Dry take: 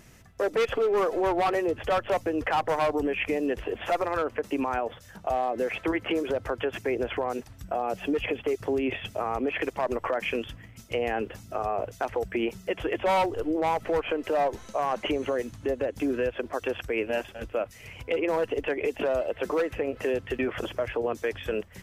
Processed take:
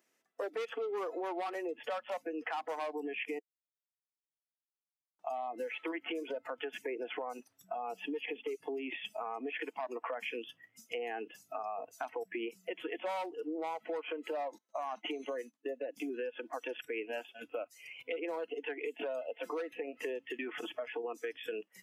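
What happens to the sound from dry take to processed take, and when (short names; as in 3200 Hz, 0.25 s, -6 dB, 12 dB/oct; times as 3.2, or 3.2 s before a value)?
3.39–5.19 mute
14.58–15.88 expander -34 dBFS
whole clip: spectral noise reduction 18 dB; HPF 290 Hz 24 dB/oct; compressor 3:1, threshold -35 dBFS; gain -2.5 dB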